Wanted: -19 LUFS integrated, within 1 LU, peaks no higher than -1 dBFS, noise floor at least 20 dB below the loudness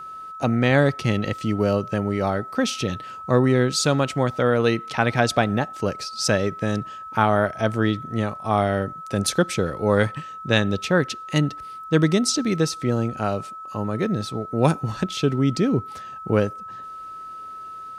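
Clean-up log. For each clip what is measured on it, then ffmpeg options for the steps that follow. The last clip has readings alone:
steady tone 1.3 kHz; tone level -34 dBFS; loudness -22.5 LUFS; peak level -2.5 dBFS; loudness target -19.0 LUFS
-> -af "bandreject=f=1300:w=30"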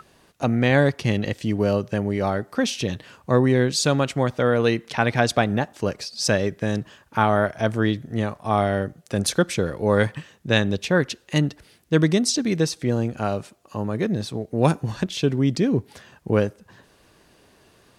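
steady tone not found; loudness -23.0 LUFS; peak level -2.5 dBFS; loudness target -19.0 LUFS
-> -af "volume=1.58,alimiter=limit=0.891:level=0:latency=1"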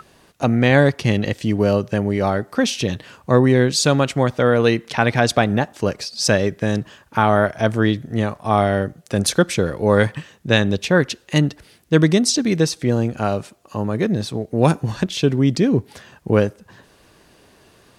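loudness -19.0 LUFS; peak level -1.0 dBFS; noise floor -53 dBFS

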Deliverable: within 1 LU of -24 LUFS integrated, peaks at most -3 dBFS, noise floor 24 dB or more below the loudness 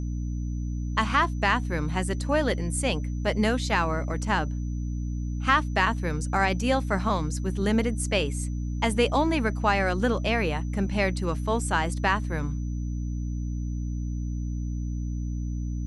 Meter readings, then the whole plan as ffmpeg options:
hum 60 Hz; highest harmonic 300 Hz; hum level -27 dBFS; steady tone 6 kHz; tone level -55 dBFS; loudness -27.0 LUFS; peak level -8.5 dBFS; loudness target -24.0 LUFS
-> -af "bandreject=f=60:t=h:w=4,bandreject=f=120:t=h:w=4,bandreject=f=180:t=h:w=4,bandreject=f=240:t=h:w=4,bandreject=f=300:t=h:w=4"
-af "bandreject=f=6000:w=30"
-af "volume=1.41"

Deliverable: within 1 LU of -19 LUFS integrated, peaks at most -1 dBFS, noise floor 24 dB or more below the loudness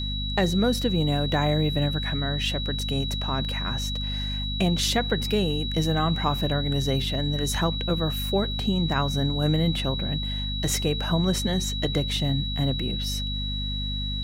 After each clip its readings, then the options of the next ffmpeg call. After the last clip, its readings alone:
hum 50 Hz; highest harmonic 250 Hz; hum level -28 dBFS; steady tone 3.9 kHz; tone level -31 dBFS; loudness -25.5 LUFS; peak level -10.0 dBFS; loudness target -19.0 LUFS
-> -af "bandreject=f=50:t=h:w=4,bandreject=f=100:t=h:w=4,bandreject=f=150:t=h:w=4,bandreject=f=200:t=h:w=4,bandreject=f=250:t=h:w=4"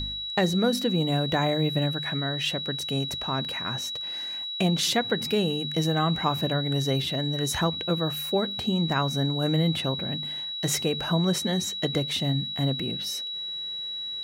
hum not found; steady tone 3.9 kHz; tone level -31 dBFS
-> -af "bandreject=f=3900:w=30"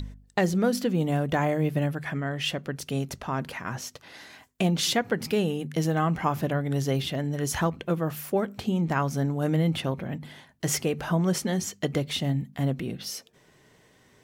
steady tone not found; loudness -27.5 LUFS; peak level -10.0 dBFS; loudness target -19.0 LUFS
-> -af "volume=2.66"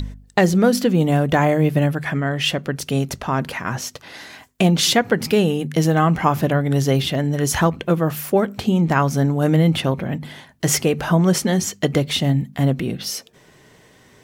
loudness -19.0 LUFS; peak level -1.5 dBFS; noise floor -51 dBFS

